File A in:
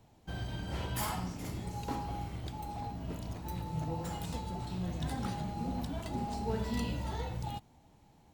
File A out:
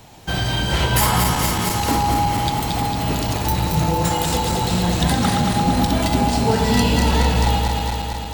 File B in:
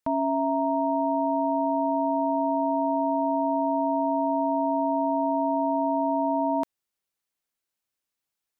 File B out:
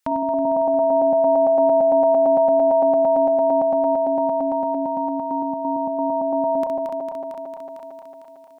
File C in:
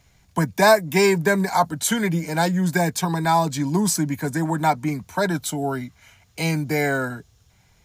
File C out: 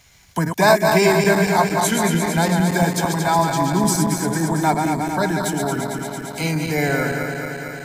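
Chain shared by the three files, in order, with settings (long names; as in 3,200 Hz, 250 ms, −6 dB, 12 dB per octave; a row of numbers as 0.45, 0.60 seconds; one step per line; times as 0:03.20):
feedback delay that plays each chunk backwards 113 ms, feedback 82%, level −5 dB
one half of a high-frequency compander encoder only
loudness normalisation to −19 LKFS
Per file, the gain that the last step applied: +14.5, +2.0, 0.0 decibels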